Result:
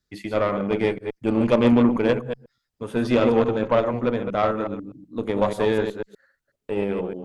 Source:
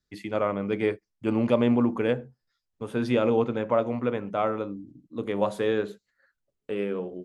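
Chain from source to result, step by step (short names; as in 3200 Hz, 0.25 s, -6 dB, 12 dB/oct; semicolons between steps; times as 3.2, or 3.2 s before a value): reverse delay 0.123 s, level -6.5 dB; added harmonics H 8 -24 dB, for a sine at -7 dBFS; gain +3.5 dB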